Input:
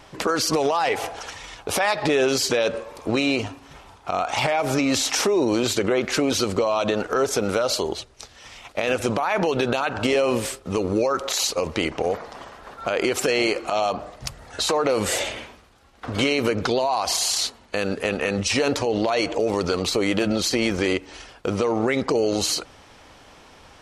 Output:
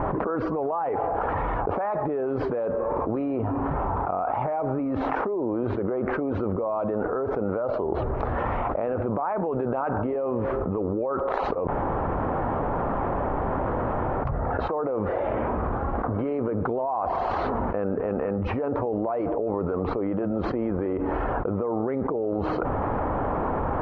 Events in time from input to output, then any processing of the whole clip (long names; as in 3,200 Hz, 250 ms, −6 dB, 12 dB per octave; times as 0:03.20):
0:11.67–0:14.25: fill with room tone
whole clip: low-pass filter 1,200 Hz 24 dB per octave; envelope flattener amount 100%; level −8.5 dB